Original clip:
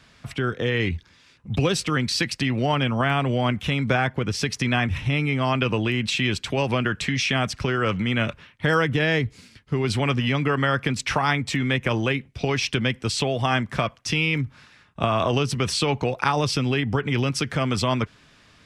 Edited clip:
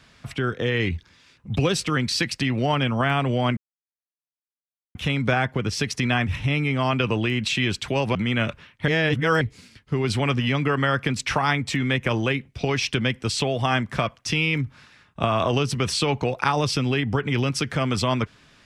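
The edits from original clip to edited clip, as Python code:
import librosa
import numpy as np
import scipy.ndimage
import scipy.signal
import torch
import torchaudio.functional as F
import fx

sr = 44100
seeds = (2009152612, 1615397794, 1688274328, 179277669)

y = fx.edit(x, sr, fx.insert_silence(at_s=3.57, length_s=1.38),
    fx.cut(start_s=6.77, length_s=1.18),
    fx.reverse_span(start_s=8.68, length_s=0.53), tone=tone)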